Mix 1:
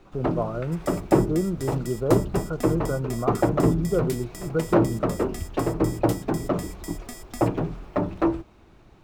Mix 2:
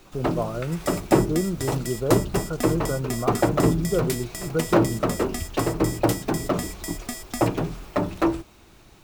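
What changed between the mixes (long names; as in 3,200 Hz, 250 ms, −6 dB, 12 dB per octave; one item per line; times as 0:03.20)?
first sound: remove low-pass filter 1,300 Hz 6 dB per octave
second sound +7.0 dB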